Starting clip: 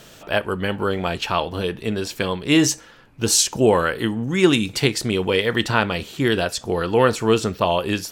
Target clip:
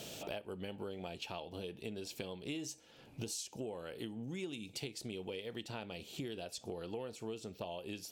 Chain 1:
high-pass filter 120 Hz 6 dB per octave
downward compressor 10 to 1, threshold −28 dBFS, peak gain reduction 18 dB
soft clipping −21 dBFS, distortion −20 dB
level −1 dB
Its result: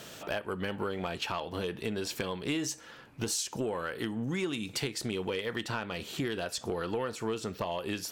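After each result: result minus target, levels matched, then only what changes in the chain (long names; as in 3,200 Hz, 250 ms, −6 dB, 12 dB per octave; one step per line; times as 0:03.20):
downward compressor: peak gain reduction −10 dB; 1,000 Hz band +2.5 dB
change: downward compressor 10 to 1, threshold −39.5 dBFS, peak gain reduction 28.5 dB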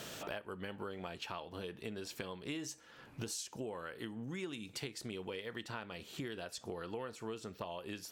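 1,000 Hz band +3.0 dB
add after high-pass filter: flat-topped bell 1,400 Hz −10 dB 1.2 octaves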